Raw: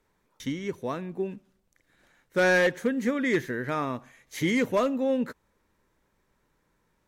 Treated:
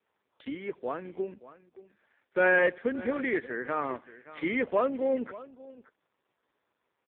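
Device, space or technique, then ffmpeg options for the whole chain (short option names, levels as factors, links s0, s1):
satellite phone: -af "highpass=330,lowpass=3300,aecho=1:1:577:0.141" -ar 8000 -c:a libopencore_amrnb -b:a 4750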